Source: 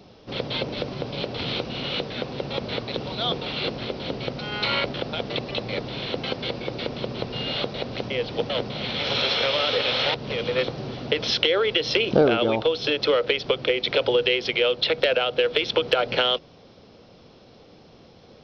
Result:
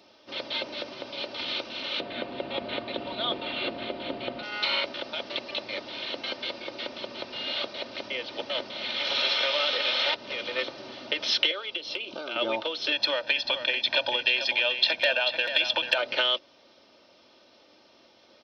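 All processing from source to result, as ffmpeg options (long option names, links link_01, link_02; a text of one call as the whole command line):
ffmpeg -i in.wav -filter_complex "[0:a]asettb=1/sr,asplit=3[link_01][link_02][link_03];[link_01]atrim=end=2.004[link_04];[link_02]atrim=start=2:end=4.43,asetpts=PTS-STARTPTS,afade=type=in:duration=0.004:curve=qsin,afade=type=out:start_time=2.426:duration=0.004:curve=qsin,lowpass=frequency=3800:width=0.5412,lowpass=frequency=3800:width=1.3066,lowshelf=frequency=430:gain=9.5,aeval=exprs='val(0)+0.0158*sin(2*PI*700*n/s)':channel_layout=same[link_05];[link_03]atrim=start=4.426[link_06];[link_04][link_05]acrossfade=duration=0.004:curve1=hsin:curve2=qsin[link_07];[link_07][link_06]acrossfade=duration=0.004:curve1=qsin:curve2=hsin,asettb=1/sr,asplit=3[link_08][link_09][link_10];[link_08]atrim=end=11.514[link_11];[link_09]atrim=start=11.51:end=12.36,asetpts=PTS-STARTPTS,afade=type=in:duration=0.004:curve=qsin,afade=type=out:start_time=0.846:duration=0.004:curve=qsin,equalizer=frequency=1800:width=2.6:gain=-12,acrossover=split=1100|3900[link_12][link_13][link_14];[link_12]acompressor=threshold=-31dB:ratio=4[link_15];[link_13]acompressor=threshold=-30dB:ratio=4[link_16];[link_14]acompressor=threshold=-46dB:ratio=4[link_17];[link_15][link_16][link_17]amix=inputs=3:normalize=0[link_18];[link_10]atrim=start=12.356[link_19];[link_11][link_18]acrossfade=duration=0.004:curve1=hsin:curve2=qsin[link_20];[link_20][link_19]acrossfade=duration=0.004:curve1=qsin:curve2=hsin,asettb=1/sr,asplit=3[link_21][link_22][link_23];[link_21]atrim=end=12.924[link_24];[link_22]atrim=start=12.92:end=15.98,asetpts=PTS-STARTPTS,afade=type=in:duration=0.004:curve=qsin,afade=type=out:start_time=3.056:duration=0.004:curve=qsin,aecho=1:1:1.2:0.73,atrim=end_sample=134946,aecho=1:1:439:0.355,atrim=end_sample=134946[link_25];[link_23]atrim=start=15.976[link_26];[link_24][link_25]acrossfade=duration=0.004:curve1=hsin:curve2=qsin[link_27];[link_27][link_26]acrossfade=duration=0.004:curve1=qsin:curve2=hsin,highpass=frequency=870:poles=1,aecho=1:1:3.3:0.59,volume=-2.5dB" out.wav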